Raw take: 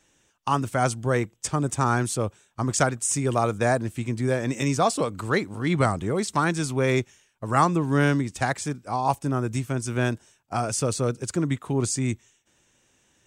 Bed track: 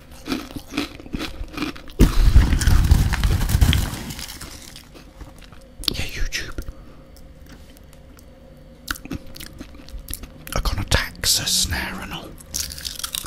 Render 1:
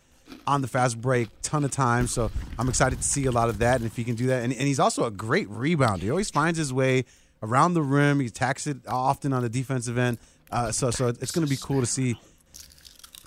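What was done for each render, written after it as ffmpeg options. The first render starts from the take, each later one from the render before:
-filter_complex "[1:a]volume=-19dB[a];[0:a][a]amix=inputs=2:normalize=0"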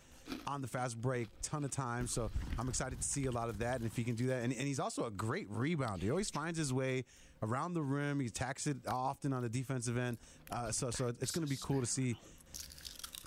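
-af "acompressor=threshold=-33dB:ratio=4,alimiter=level_in=2.5dB:limit=-24dB:level=0:latency=1:release=311,volume=-2.5dB"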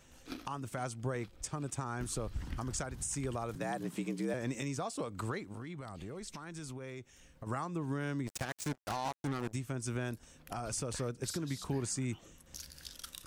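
-filter_complex "[0:a]asettb=1/sr,asplit=3[a][b][c];[a]atrim=end=3.554[d];[b]atrim=start=3.55:end=4.34,asetpts=PTS-STARTPTS,afade=t=in:d=0.004:c=qsin,afade=t=out:st=0.786:d=0.004:c=qsin,afreqshift=71[e];[c]atrim=start=4.336[f];[d][e]acrossfade=d=0.004:c1=hsin:c2=qsin[g];[g][f]acrossfade=d=0.004:c1=qsin:c2=hsin,asettb=1/sr,asplit=3[h][i][j];[h]atrim=end=5.524[k];[i]atrim=start=5.52:end=7.47,asetpts=PTS-STARTPTS,afade=t=in:d=0.004:c=qsin,afade=t=out:st=1.946:d=0.004:c=qsin,acompressor=threshold=-42dB:ratio=4:attack=3.2:release=140:knee=1:detection=peak[l];[j]atrim=start=7.466[m];[k][l]acrossfade=d=0.004:c1=hsin:c2=qsin[n];[n][m]acrossfade=d=0.004:c1=qsin:c2=hsin,asplit=3[o][p][q];[o]afade=t=out:st=8.26:d=0.02[r];[p]acrusher=bits=5:mix=0:aa=0.5,afade=t=in:st=8.26:d=0.02,afade=t=out:st=9.52:d=0.02[s];[q]afade=t=in:st=9.52:d=0.02[t];[r][s][t]amix=inputs=3:normalize=0"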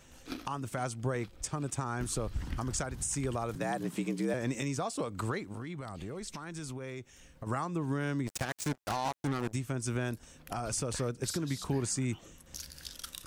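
-af "volume=3.5dB"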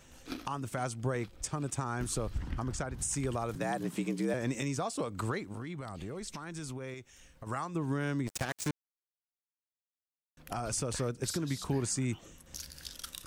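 -filter_complex "[0:a]asettb=1/sr,asplit=3[a][b][c];[a]atrim=end=2.384[d];[b]atrim=start=2.38:end=2.99,asetpts=PTS-STARTPTS,afade=t=in:d=0.004:c=qsin,afade=t=out:st=0.606:d=0.004:c=qsin,highshelf=f=4k:g=-9.5[e];[c]atrim=start=2.986[f];[d][e]acrossfade=d=0.004:c1=hsin:c2=qsin[g];[g][f]acrossfade=d=0.004:c1=qsin:c2=hsin,asettb=1/sr,asplit=3[h][i][j];[h]atrim=end=6.944[k];[i]atrim=start=6.94:end=7.75,asetpts=PTS-STARTPTS,afade=t=in:d=0.004:c=qsin,afade=t=out:st=0.806:d=0.004:c=qsin,equalizer=f=210:w=0.33:g=-5[l];[j]atrim=start=7.746[m];[k][l]acrossfade=d=0.004:c1=hsin:c2=qsin[n];[n][m]acrossfade=d=0.004:c1=qsin:c2=hsin,asplit=3[o][p][q];[o]atrim=end=8.71,asetpts=PTS-STARTPTS,afade=t=out:st=8.706:d=0.004:c=hsin[r];[p]atrim=start=8.71:end=10.37,asetpts=PTS-STARTPTS,volume=0[s];[q]atrim=start=10.37,asetpts=PTS-STARTPTS,afade=t=in:d=0.004:c=hsin[t];[r][s][t]concat=n=3:v=0:a=1"

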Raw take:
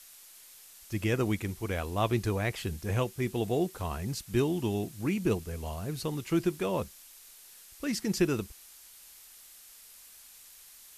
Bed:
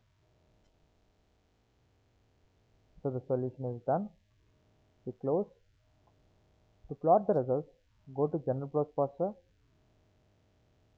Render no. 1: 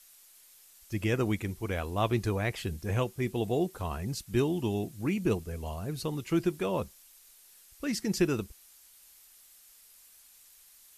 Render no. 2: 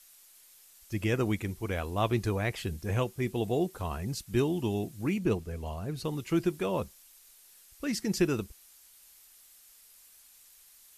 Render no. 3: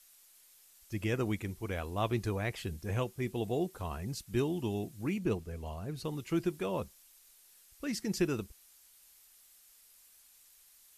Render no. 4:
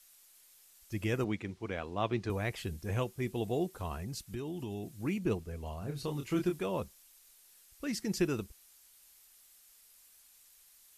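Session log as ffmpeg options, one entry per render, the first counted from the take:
-af "afftdn=nr=6:nf=-53"
-filter_complex "[0:a]asettb=1/sr,asplit=3[a][b][c];[a]atrim=end=5.184[d];[b]atrim=start=5.18:end=6.05,asetpts=PTS-STARTPTS,afade=t=in:d=0.004:c=qsin,afade=t=out:st=0.866:d=0.004:c=qsin,highshelf=f=5.9k:g=-6.5[e];[c]atrim=start=6.046[f];[d][e]acrossfade=d=0.004:c1=hsin:c2=qsin[g];[g][f]acrossfade=d=0.004:c1=qsin:c2=hsin"
-af "volume=-4dB"
-filter_complex "[0:a]asettb=1/sr,asplit=3[a][b][c];[a]atrim=end=1.244[d];[b]atrim=start=1.24:end=2.3,asetpts=PTS-STARTPTS,afade=t=in:d=0.004:c=qsin,afade=t=out:st=1.056:d=0.004:c=qsin,highpass=120,lowpass=4.8k[e];[c]atrim=start=2.296[f];[d][e]acrossfade=d=0.004:c1=hsin:c2=qsin[g];[g][f]acrossfade=d=0.004:c1=qsin:c2=hsin,asettb=1/sr,asplit=3[h][i][j];[h]atrim=end=3.954[k];[i]atrim=start=3.95:end=5.01,asetpts=PTS-STARTPTS,afade=t=in:d=0.004:c=qsin,afade=t=out:st=1.056:d=0.004:c=qsin,acompressor=threshold=-35dB:ratio=6:attack=3.2:release=140:knee=1:detection=peak[l];[j]atrim=start=5.006[m];[k][l]acrossfade=d=0.004:c1=hsin:c2=qsin[n];[n][m]acrossfade=d=0.004:c1=qsin:c2=hsin,asettb=1/sr,asplit=3[o][p][q];[o]atrim=end=5.794[r];[p]atrim=start=5.79:end=6.59,asetpts=PTS-STARTPTS,afade=t=in:d=0.004:c=qsin,afade=t=out:st=0.796:d=0.004:c=qsin,asplit=2[s][t];[t]adelay=28,volume=-5dB[u];[s][u]amix=inputs=2:normalize=0,atrim=end_sample=35280[v];[q]atrim=start=6.586[w];[r][v]acrossfade=d=0.004:c1=hsin:c2=qsin[x];[x][w]acrossfade=d=0.004:c1=qsin:c2=hsin"

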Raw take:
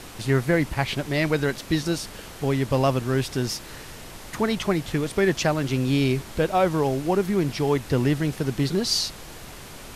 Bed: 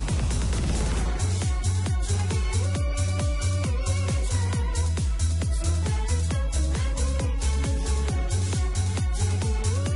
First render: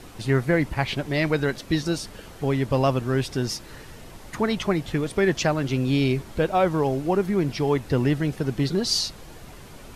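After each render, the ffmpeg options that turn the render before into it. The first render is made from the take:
-af "afftdn=nr=7:nf=-41"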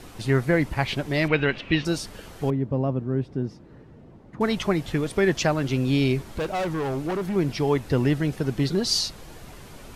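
-filter_complex "[0:a]asettb=1/sr,asplit=3[a][b][c];[a]atrim=end=1.284[d];[b]atrim=start=1.28:end=1.85,asetpts=PTS-STARTPTS,afade=t=in:d=0.004:c=qsin,afade=t=out:st=0.566:d=0.004:c=qsin,lowpass=f=2.7k:t=q:w=4.5[e];[c]atrim=start=1.846[f];[d][e]acrossfade=d=0.004:c1=hsin:c2=qsin[g];[g][f]acrossfade=d=0.004:c1=qsin:c2=hsin,asettb=1/sr,asplit=3[h][i][j];[h]atrim=end=2.504[k];[i]atrim=start=2.5:end=4.41,asetpts=PTS-STARTPTS,afade=t=in:d=0.004:c=qsin,afade=t=out:st=1.906:d=0.004:c=qsin,bandpass=f=200:t=q:w=0.72[l];[j]atrim=start=4.406[m];[k][l]acrossfade=d=0.004:c1=hsin:c2=qsin[n];[n][m]acrossfade=d=0.004:c1=qsin:c2=hsin,asettb=1/sr,asplit=3[o][p][q];[o]atrim=end=6.294[r];[p]atrim=start=6.29:end=7.36,asetpts=PTS-STARTPTS,afade=t=in:d=0.004:c=qsin,afade=t=out:st=1.066:d=0.004:c=qsin,asoftclip=type=hard:threshold=-24dB[s];[q]atrim=start=7.356[t];[r][s]acrossfade=d=0.004:c1=hsin:c2=qsin[u];[u][t]acrossfade=d=0.004:c1=qsin:c2=hsin"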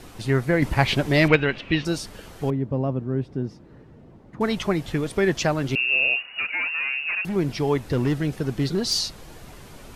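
-filter_complex "[0:a]asettb=1/sr,asplit=3[a][b][c];[a]atrim=end=0.624[d];[b]atrim=start=0.62:end=1.36,asetpts=PTS-STARTPTS,afade=t=in:d=0.004:c=qsin,afade=t=out:st=0.736:d=0.004:c=qsin,acontrast=42[e];[c]atrim=start=1.356[f];[d][e]acrossfade=d=0.004:c1=hsin:c2=qsin[g];[g][f]acrossfade=d=0.004:c1=qsin:c2=hsin,asettb=1/sr,asplit=3[h][i][j];[h]atrim=end=5.754[k];[i]atrim=start=5.75:end=7.25,asetpts=PTS-STARTPTS,afade=t=in:d=0.004:c=qsin,afade=t=out:st=1.496:d=0.004:c=qsin,lowpass=f=2.5k:t=q:w=0.5098,lowpass=f=2.5k:t=q:w=0.6013,lowpass=f=2.5k:t=q:w=0.9,lowpass=f=2.5k:t=q:w=2.563,afreqshift=-2900[l];[j]atrim=start=7.246[m];[k][l]acrossfade=d=0.004:c1=hsin:c2=qsin[n];[n][m]acrossfade=d=0.004:c1=qsin:c2=hsin,asplit=3[o][p][q];[o]afade=t=out:st=7.78:d=0.02[r];[p]asoftclip=type=hard:threshold=-16.5dB,afade=t=in:st=7.78:d=0.02,afade=t=out:st=9:d=0.02[s];[q]afade=t=in:st=9:d=0.02[t];[r][s][t]amix=inputs=3:normalize=0"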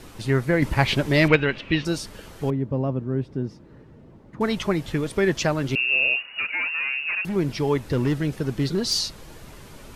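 -af "bandreject=f=730:w=12"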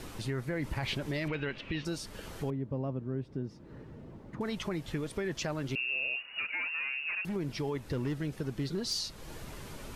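-af "alimiter=limit=-15dB:level=0:latency=1:release=11,acompressor=threshold=-40dB:ratio=2"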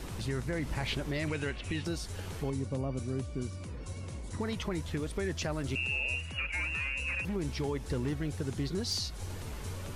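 -filter_complex "[1:a]volume=-17dB[a];[0:a][a]amix=inputs=2:normalize=0"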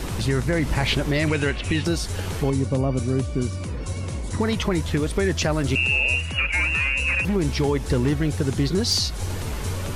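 -af "volume=12dB"

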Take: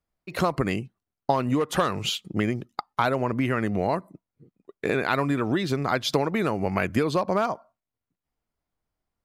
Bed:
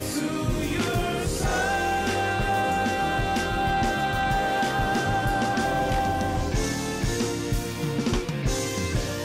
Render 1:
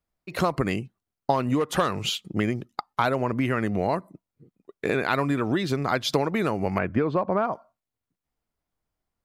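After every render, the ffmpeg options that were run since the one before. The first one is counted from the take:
-filter_complex "[0:a]asettb=1/sr,asplit=3[a][b][c];[a]atrim=end=6.784[d];[b]atrim=start=6.78:end=7.53,asetpts=PTS-STARTPTS,afade=t=in:d=0.004:c=qsin,afade=t=out:st=0.746:d=0.004:c=qsin,lowpass=1.8k[e];[c]atrim=start=7.526[f];[d][e]acrossfade=d=0.004:c1=hsin:c2=qsin[g];[g][f]acrossfade=d=0.004:c1=qsin:c2=hsin"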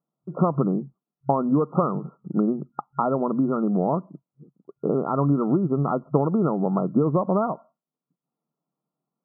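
-af "afftfilt=real='re*between(b*sr/4096,130,1400)':imag='im*between(b*sr/4096,130,1400)':win_size=4096:overlap=0.75,aemphasis=mode=reproduction:type=bsi"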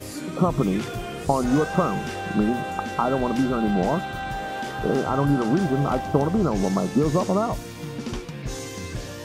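-filter_complex "[1:a]volume=-6dB[a];[0:a][a]amix=inputs=2:normalize=0"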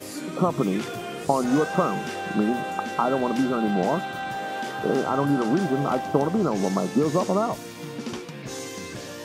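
-af "highpass=180"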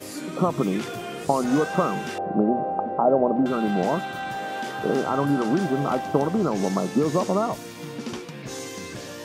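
-filter_complex "[0:a]asettb=1/sr,asplit=3[a][b][c];[a]atrim=end=2.184[d];[b]atrim=start=2.18:end=3.46,asetpts=PTS-STARTPTS,afade=t=in:d=0.004:c=qsin,afade=t=out:st=1.276:d=0.004:c=qsin,lowpass=f=660:t=q:w=2.4[e];[c]atrim=start=3.456[f];[d][e]acrossfade=d=0.004:c1=hsin:c2=qsin[g];[g][f]acrossfade=d=0.004:c1=qsin:c2=hsin"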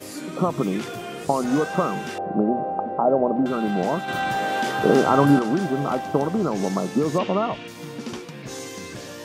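-filter_complex "[0:a]asettb=1/sr,asplit=3[a][b][c];[a]atrim=end=7.184[d];[b]atrim=start=7.18:end=7.68,asetpts=PTS-STARTPTS,afade=t=in:d=0.004:c=qsin,afade=t=out:st=0.496:d=0.004:c=qsin,lowpass=f=2.9k:t=q:w=3.4[e];[c]atrim=start=7.676[f];[d][e]acrossfade=d=0.004:c1=hsin:c2=qsin[g];[g][f]acrossfade=d=0.004:c1=qsin:c2=hsin,asplit=3[h][i][j];[h]atrim=end=4.082[k];[i]atrim=start=4.078:end=5.392,asetpts=PTS-STARTPTS,volume=6.5dB[l];[j]atrim=start=5.388[m];[k][l]acrossfade=d=0.004:c1=hsin:c2=hsin[n];[n][m]acrossfade=d=0.004:c1=hsin:c2=hsin"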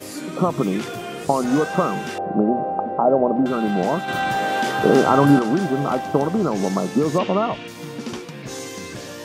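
-af "volume=2.5dB,alimiter=limit=-3dB:level=0:latency=1"

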